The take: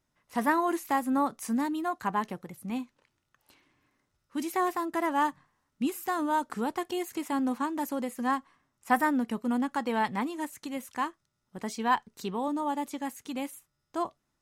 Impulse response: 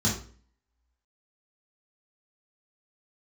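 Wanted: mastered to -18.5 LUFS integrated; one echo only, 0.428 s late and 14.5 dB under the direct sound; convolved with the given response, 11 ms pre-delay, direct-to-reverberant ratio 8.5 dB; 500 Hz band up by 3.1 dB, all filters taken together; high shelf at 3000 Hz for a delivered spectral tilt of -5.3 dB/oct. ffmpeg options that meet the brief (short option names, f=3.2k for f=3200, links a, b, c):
-filter_complex "[0:a]equalizer=f=500:t=o:g=4.5,highshelf=f=3k:g=-5.5,aecho=1:1:428:0.188,asplit=2[a][b];[1:a]atrim=start_sample=2205,adelay=11[c];[b][c]afir=irnorm=-1:irlink=0,volume=-18.5dB[d];[a][d]amix=inputs=2:normalize=0,volume=9.5dB"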